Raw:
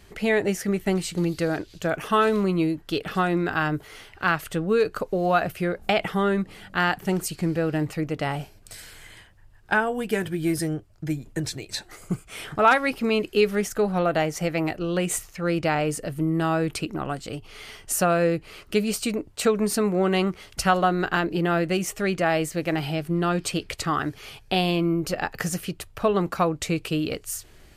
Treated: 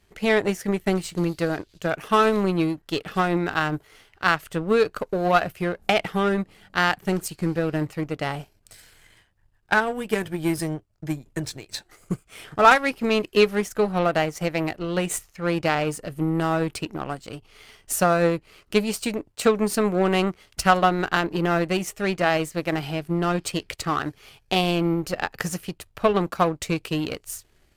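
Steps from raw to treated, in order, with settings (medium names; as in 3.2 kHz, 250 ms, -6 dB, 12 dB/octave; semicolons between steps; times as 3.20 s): power-law waveshaper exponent 1.4; trim +5 dB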